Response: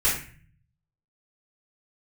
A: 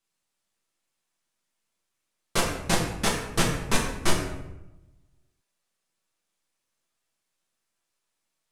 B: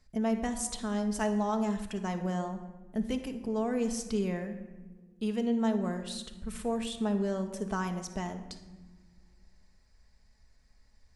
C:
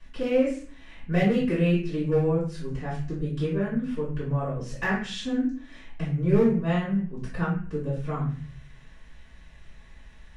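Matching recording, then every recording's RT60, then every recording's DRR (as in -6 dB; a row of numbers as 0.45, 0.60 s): C; 0.95 s, not exponential, 0.45 s; -4.0, 5.0, -12.0 dB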